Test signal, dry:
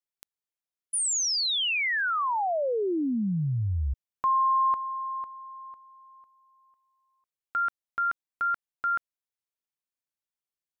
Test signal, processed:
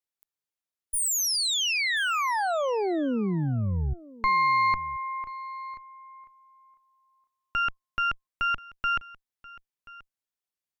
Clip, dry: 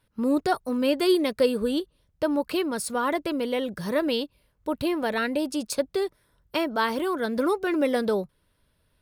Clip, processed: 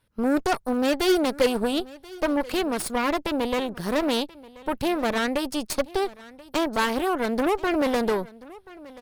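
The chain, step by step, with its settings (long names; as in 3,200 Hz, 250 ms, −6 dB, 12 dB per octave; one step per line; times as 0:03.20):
harmonic generator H 3 −42 dB, 8 −16 dB, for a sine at −10.5 dBFS
single-tap delay 1,032 ms −20.5 dB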